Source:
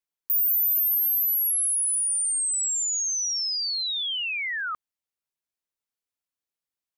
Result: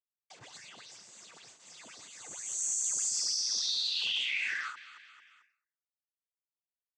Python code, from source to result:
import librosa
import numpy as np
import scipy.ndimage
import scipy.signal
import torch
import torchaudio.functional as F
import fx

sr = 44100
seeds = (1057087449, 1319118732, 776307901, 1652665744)

y = fx.peak_eq(x, sr, hz=650.0, db=-11.0, octaves=2.5)
y = fx.rider(y, sr, range_db=5, speed_s=0.5)
y = fx.quant_dither(y, sr, seeds[0], bits=6, dither='none')
y = fx.noise_vocoder(y, sr, seeds[1], bands=16)
y = fx.echo_feedback(y, sr, ms=222, feedback_pct=57, wet_db=-17.5)
y = fx.end_taper(y, sr, db_per_s=120.0)
y = y * 10.0 ** (-6.0 / 20.0)